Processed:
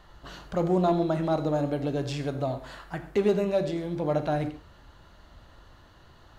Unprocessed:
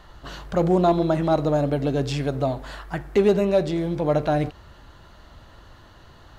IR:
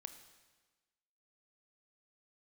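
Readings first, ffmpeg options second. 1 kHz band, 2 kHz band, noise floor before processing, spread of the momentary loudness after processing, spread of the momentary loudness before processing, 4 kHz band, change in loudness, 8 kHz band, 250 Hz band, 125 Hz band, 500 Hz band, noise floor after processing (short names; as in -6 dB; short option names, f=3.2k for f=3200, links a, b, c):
-5.5 dB, -5.5 dB, -49 dBFS, 14 LU, 13 LU, -5.5 dB, -5.5 dB, n/a, -5.0 dB, -5.5 dB, -5.5 dB, -55 dBFS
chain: -filter_complex "[1:a]atrim=start_sample=2205,atrim=end_sample=6174[a];[0:a][a]afir=irnorm=-1:irlink=0"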